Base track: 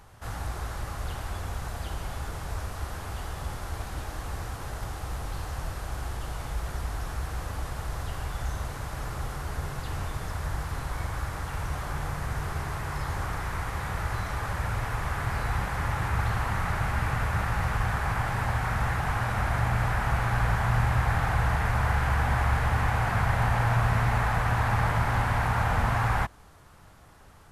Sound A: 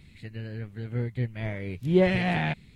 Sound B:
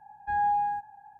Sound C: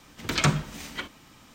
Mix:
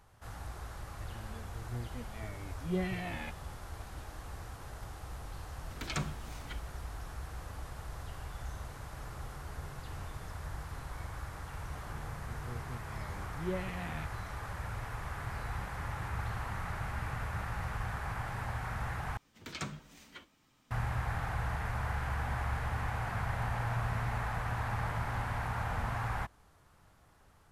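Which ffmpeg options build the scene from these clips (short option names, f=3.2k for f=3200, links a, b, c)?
-filter_complex "[1:a]asplit=2[a][b];[3:a]asplit=2[c][d];[0:a]volume=-10dB[e];[a]asplit=2[f][g];[g]adelay=2.1,afreqshift=-1.5[h];[f][h]amix=inputs=2:normalize=1[i];[d]flanger=delay=6.3:depth=6.2:regen=-45:speed=1.4:shape=triangular[j];[e]asplit=2[k][l];[k]atrim=end=19.174[m];[j]atrim=end=1.54,asetpts=PTS-STARTPTS,volume=-12.5dB[n];[l]atrim=start=20.706[o];[i]atrim=end=2.75,asetpts=PTS-STARTPTS,volume=-9.5dB,afade=t=in:d=0.004:c=hsin,afade=t=out:st=2.746:d=0.004:c=hsin,adelay=770[p];[c]atrim=end=1.54,asetpts=PTS-STARTPTS,volume=-13.5dB,afade=t=in:d=0.004:c=hsin,afade=t=out:st=1.536:d=0.004:c=hsin,adelay=5520[q];[b]atrim=end=2.75,asetpts=PTS-STARTPTS,volume=-16dB,afade=t=in:d=0.004:c=hsin,afade=t=out:st=2.746:d=0.004:c=hsin,adelay=11520[r];[m][n]acrossfade=d=0.004:c1=hsin:c2=hsin[s];[s][o]acrossfade=d=0.004:c1=hsin:c2=hsin[t];[t][p][q][r]amix=inputs=4:normalize=0"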